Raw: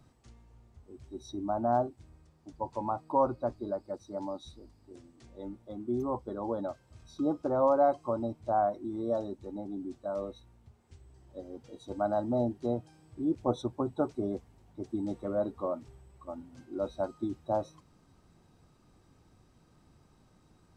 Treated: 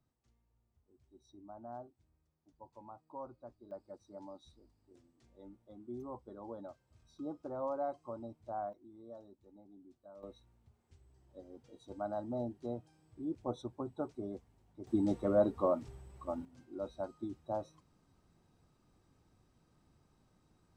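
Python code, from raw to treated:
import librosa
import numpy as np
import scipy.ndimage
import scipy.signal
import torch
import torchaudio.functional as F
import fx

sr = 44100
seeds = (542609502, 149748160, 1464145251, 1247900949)

y = fx.gain(x, sr, db=fx.steps((0.0, -19.5), (3.71, -12.5), (8.73, -20.0), (10.23, -9.0), (14.87, 2.5), (16.45, -7.5)))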